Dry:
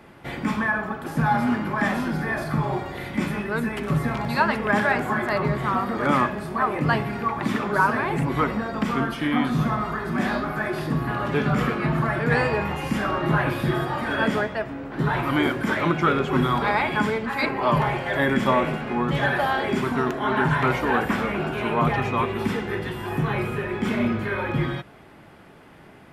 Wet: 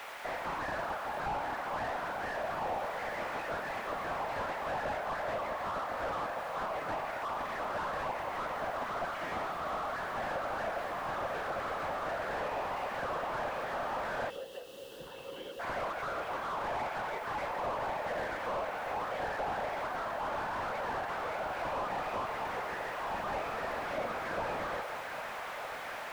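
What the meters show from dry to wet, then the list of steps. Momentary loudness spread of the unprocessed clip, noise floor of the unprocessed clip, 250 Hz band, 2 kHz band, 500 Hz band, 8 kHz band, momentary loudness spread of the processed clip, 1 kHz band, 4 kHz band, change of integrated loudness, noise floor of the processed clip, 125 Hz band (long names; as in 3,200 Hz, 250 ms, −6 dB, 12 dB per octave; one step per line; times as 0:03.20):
6 LU, −48 dBFS, −23.5 dB, −12.5 dB, −10.0 dB, −8.0 dB, 3 LU, −9.0 dB, −11.0 dB, −12.5 dB, −43 dBFS, −24.5 dB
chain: low shelf with overshoot 470 Hz −6.5 dB, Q 3
random phases in short frames
soft clipping −16.5 dBFS, distortion −13 dB
bit-depth reduction 6 bits, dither triangular
downward compressor, threshold −25 dBFS, peak gain reduction 6.5 dB
three-way crossover with the lows and the highs turned down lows −21 dB, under 490 Hz, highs −22 dB, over 2,600 Hz
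on a send: delay that swaps between a low-pass and a high-pass 400 ms, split 860 Hz, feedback 79%, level −10.5 dB
on the sum: speech leveller within 5 dB 2 s
gain on a spectral selection 0:14.30–0:15.60, 570–2,600 Hz −21 dB
slew-rate limiting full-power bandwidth 26 Hz
level −2 dB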